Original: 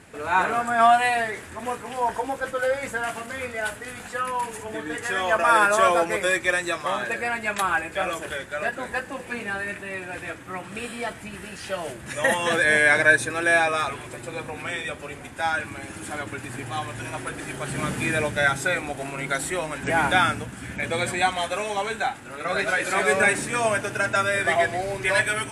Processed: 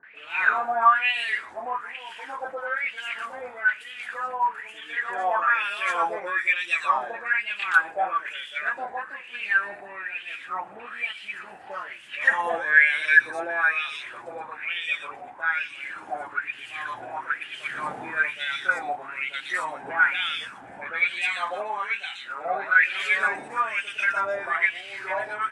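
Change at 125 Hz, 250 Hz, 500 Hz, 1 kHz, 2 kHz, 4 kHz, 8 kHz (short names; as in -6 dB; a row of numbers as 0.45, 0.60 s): under -20 dB, -15.5 dB, -9.5 dB, -2.5 dB, +0.5 dB, -2.0 dB, under -15 dB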